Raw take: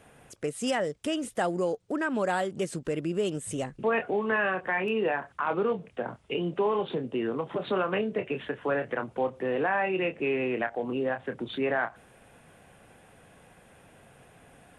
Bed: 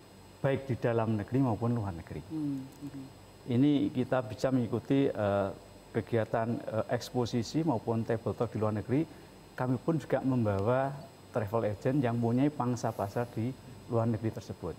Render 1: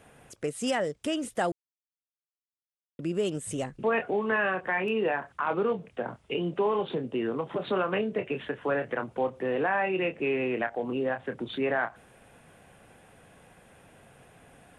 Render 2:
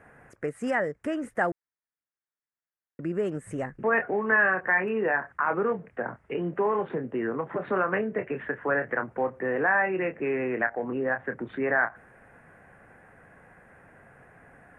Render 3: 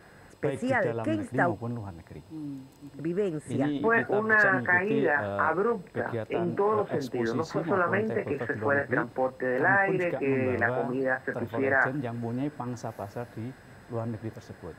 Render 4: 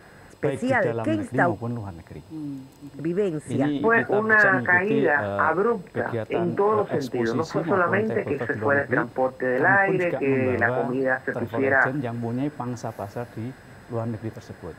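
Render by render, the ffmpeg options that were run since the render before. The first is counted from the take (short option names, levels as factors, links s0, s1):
-filter_complex "[0:a]asplit=3[s0][s1][s2];[s0]atrim=end=1.52,asetpts=PTS-STARTPTS,afade=t=out:st=1.516:d=0.004:c=hsin[s3];[s1]atrim=start=1.52:end=2.99,asetpts=PTS-STARTPTS,volume=0[s4];[s2]atrim=start=2.99,asetpts=PTS-STARTPTS,afade=t=in:d=0.004:c=hsin[s5];[s3][s4][s5]concat=n=3:v=0:a=1"
-af "highshelf=f=2500:t=q:w=3:g=-11.5"
-filter_complex "[1:a]volume=0.668[s0];[0:a][s0]amix=inputs=2:normalize=0"
-af "volume=1.68"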